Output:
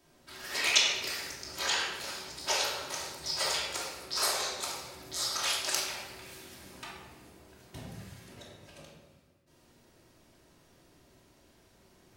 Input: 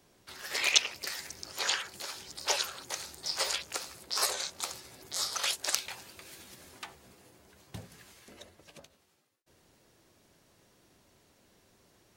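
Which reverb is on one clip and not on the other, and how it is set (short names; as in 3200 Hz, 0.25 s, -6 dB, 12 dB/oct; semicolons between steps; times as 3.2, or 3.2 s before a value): shoebox room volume 860 m³, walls mixed, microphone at 2.8 m; gain -4 dB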